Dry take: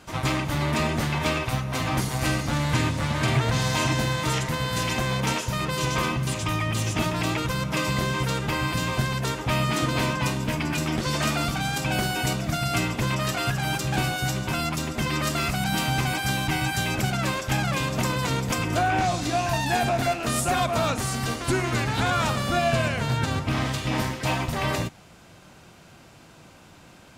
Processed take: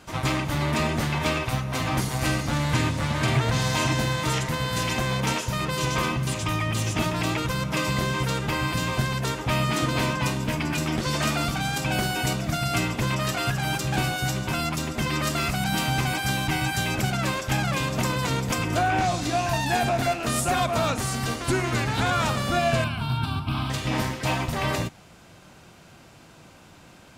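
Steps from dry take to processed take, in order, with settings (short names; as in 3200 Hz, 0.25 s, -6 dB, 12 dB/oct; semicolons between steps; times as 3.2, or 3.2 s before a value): 22.84–23.7 fixed phaser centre 1900 Hz, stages 6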